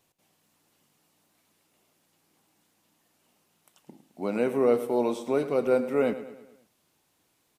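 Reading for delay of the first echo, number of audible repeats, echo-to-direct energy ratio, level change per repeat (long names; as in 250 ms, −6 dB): 107 ms, 4, −12.0 dB, −6.0 dB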